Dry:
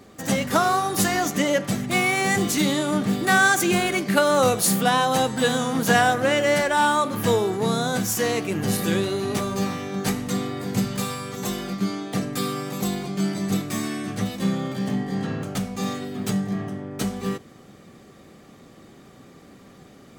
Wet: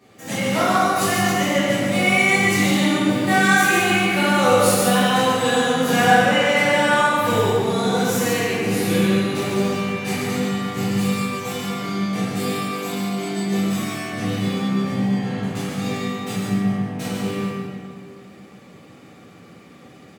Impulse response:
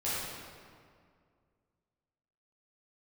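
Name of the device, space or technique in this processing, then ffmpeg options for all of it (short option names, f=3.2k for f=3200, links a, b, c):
PA in a hall: -filter_complex "[0:a]highpass=110,equalizer=f=2.5k:t=o:w=0.73:g=6,aecho=1:1:142:0.562[a];[1:a]atrim=start_sample=2205[b];[a][b]afir=irnorm=-1:irlink=0,asettb=1/sr,asplit=3[c][d][e];[c]atrim=end=12.714[f];[d]atrim=start=12.71:end=14.13,asetpts=PTS-STARTPTS,afade=t=in:d=0.004:c=qsin,afade=t=out:st=1.416:d=0.004:c=qsin,highpass=f=200:p=1[g];[e]atrim=start=14.126[h];[f][g]acrossfade=d=0.004:c1=hsin:c2=qsin[i];[i][h]acrossfade=d=0.004:c1=qsin:c2=hsin,volume=-6dB"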